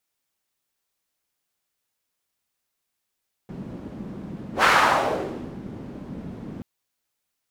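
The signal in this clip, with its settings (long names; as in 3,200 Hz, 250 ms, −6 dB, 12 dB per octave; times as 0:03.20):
pass-by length 3.13 s, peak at 0:01.15, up 0.11 s, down 0.99 s, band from 210 Hz, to 1,400 Hz, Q 1.8, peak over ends 20 dB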